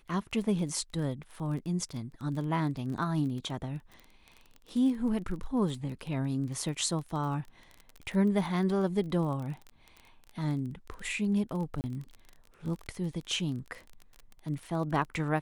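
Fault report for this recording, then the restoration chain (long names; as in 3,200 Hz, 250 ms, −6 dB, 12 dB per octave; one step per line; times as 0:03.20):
surface crackle 26 per second −37 dBFS
0:11.81–0:11.84: drop-out 29 ms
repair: click removal
repair the gap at 0:11.81, 29 ms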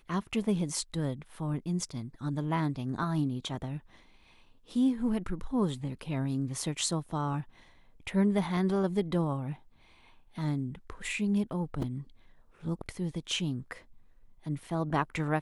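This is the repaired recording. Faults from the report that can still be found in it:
none of them is left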